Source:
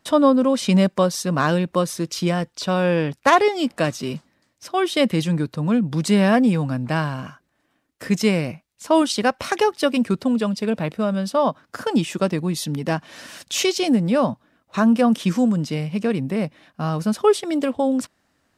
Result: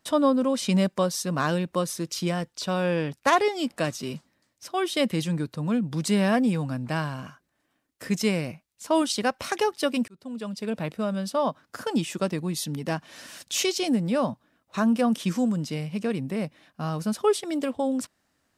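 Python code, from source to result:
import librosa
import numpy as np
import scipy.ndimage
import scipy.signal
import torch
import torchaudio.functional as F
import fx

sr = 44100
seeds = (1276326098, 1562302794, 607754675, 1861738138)

y = fx.edit(x, sr, fx.fade_in_span(start_s=10.08, length_s=0.73), tone=tone)
y = fx.high_shelf(y, sr, hz=5100.0, db=5.5)
y = y * 10.0 ** (-6.0 / 20.0)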